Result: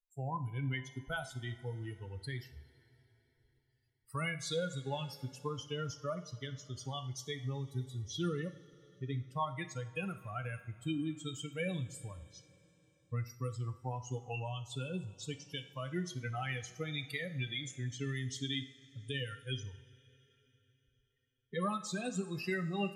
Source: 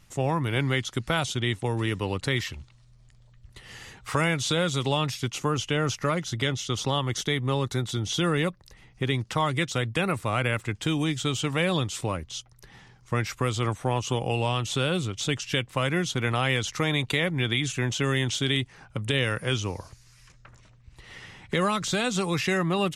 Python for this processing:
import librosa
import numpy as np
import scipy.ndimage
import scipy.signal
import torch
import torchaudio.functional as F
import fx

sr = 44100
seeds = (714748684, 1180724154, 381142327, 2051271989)

y = fx.bin_expand(x, sr, power=3.0)
y = fx.rev_double_slope(y, sr, seeds[0], early_s=0.52, late_s=4.0, knee_db=-18, drr_db=8.0)
y = F.gain(torch.from_numpy(y), -5.5).numpy()